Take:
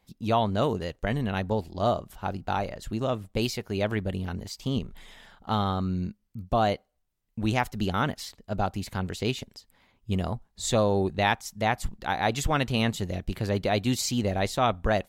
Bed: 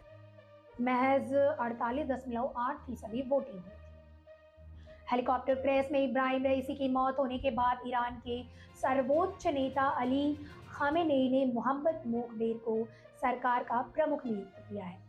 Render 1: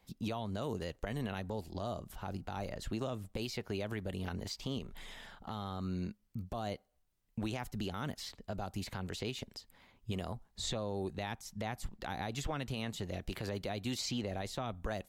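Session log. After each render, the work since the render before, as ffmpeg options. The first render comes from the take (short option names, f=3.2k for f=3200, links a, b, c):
-filter_complex "[0:a]acrossover=split=330|5300[a][b][c];[a]acompressor=threshold=-38dB:ratio=4[d];[b]acompressor=threshold=-37dB:ratio=4[e];[c]acompressor=threshold=-53dB:ratio=4[f];[d][e][f]amix=inputs=3:normalize=0,alimiter=level_in=3dB:limit=-24dB:level=0:latency=1:release=64,volume=-3dB"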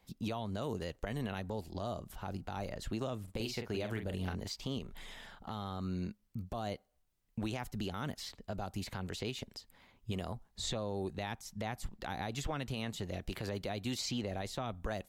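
-filter_complex "[0:a]asettb=1/sr,asplit=3[a][b][c];[a]atrim=end=3.234[d];[b]atrim=start=3.23:end=4.35,asetpts=PTS-STARTPTS,afade=t=in:d=0.004:c=qsin,afade=t=out:st=1.116:d=0.004:c=qsin,asplit=2[e][f];[f]adelay=44,volume=-7dB[g];[e][g]amix=inputs=2:normalize=0,atrim=end_sample=49392[h];[c]atrim=start=4.346[i];[d][h]acrossfade=d=0.004:c1=hsin:c2=qsin[j];[j][i]acrossfade=d=0.004:c1=qsin:c2=hsin"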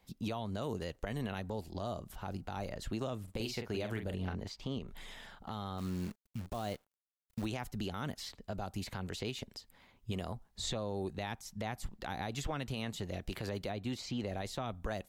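-filter_complex "[0:a]asettb=1/sr,asplit=3[a][b][c];[a]atrim=end=4.144[d];[b]atrim=start=4.14:end=4.88,asetpts=PTS-STARTPTS,afade=t=in:d=0.004:c=qsin,afade=t=out:st=0.736:d=0.004:c=qsin,lowpass=f=2.9k:p=1[e];[c]atrim=start=4.876[f];[d][e]acrossfade=d=0.004:c1=hsin:c2=qsin[g];[g][f]acrossfade=d=0.004:c1=qsin:c2=hsin,asplit=3[h][i][j];[h]afade=t=out:st=5.77:d=0.02[k];[i]acrusher=bits=9:dc=4:mix=0:aa=0.000001,afade=t=in:st=5.77:d=0.02,afade=t=out:st=7.44:d=0.02[l];[j]afade=t=in:st=7.44:d=0.02[m];[k][l][m]amix=inputs=3:normalize=0,asplit=3[n][o][p];[n]afade=t=out:st=13.7:d=0.02[q];[o]highshelf=f=3.4k:g=-10.5,afade=t=in:st=13.7:d=0.02,afade=t=out:st=14.19:d=0.02[r];[p]afade=t=in:st=14.19:d=0.02[s];[q][r][s]amix=inputs=3:normalize=0"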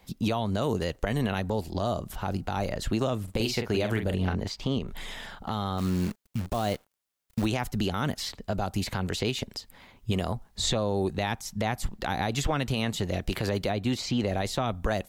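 -af "volume=10.5dB"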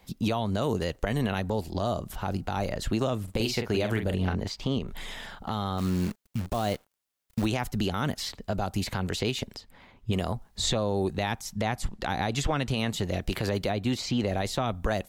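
-filter_complex "[0:a]asettb=1/sr,asplit=3[a][b][c];[a]atrim=end=9.564[d];[b]atrim=start=9.56:end=10.13,asetpts=PTS-STARTPTS,afade=t=in:d=0.004:c=qsin,afade=t=out:st=0.566:d=0.004:c=qsin,highshelf=f=4.9k:g=-11.5[e];[c]atrim=start=10.126[f];[d][e]acrossfade=d=0.004:c1=hsin:c2=qsin[g];[g][f]acrossfade=d=0.004:c1=qsin:c2=hsin,asettb=1/sr,asplit=3[h][i][j];[h]atrim=end=11.564[k];[i]atrim=start=11.56:end=12.79,asetpts=PTS-STARTPTS,afade=t=in:d=0.004:c=qsin,afade=t=out:st=1.226:d=0.004:c=qsin,lowpass=11k[l];[j]atrim=start=12.786[m];[k][l]acrossfade=d=0.004:c1=hsin:c2=qsin[n];[n][m]acrossfade=d=0.004:c1=qsin:c2=hsin"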